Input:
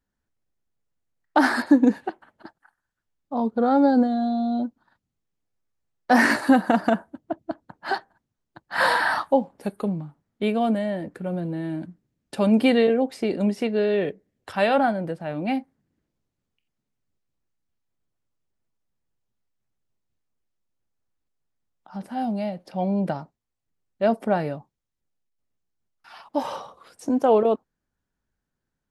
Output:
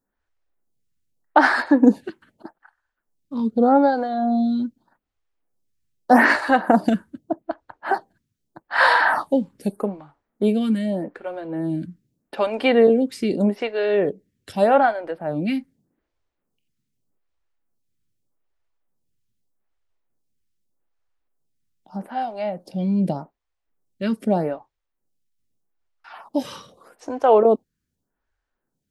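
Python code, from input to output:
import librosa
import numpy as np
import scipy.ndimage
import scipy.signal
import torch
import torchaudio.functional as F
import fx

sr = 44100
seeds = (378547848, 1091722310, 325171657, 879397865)

y = fx.stagger_phaser(x, sr, hz=0.82)
y = y * librosa.db_to_amplitude(5.5)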